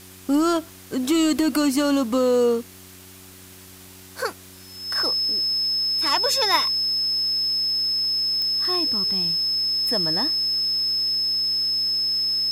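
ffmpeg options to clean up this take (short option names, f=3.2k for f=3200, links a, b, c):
-af "adeclick=t=4,bandreject=f=93.4:t=h:w=4,bandreject=f=186.8:t=h:w=4,bandreject=f=280.2:t=h:w=4,bandreject=f=373.6:t=h:w=4,bandreject=f=5.2k:w=30,afwtdn=0.0056"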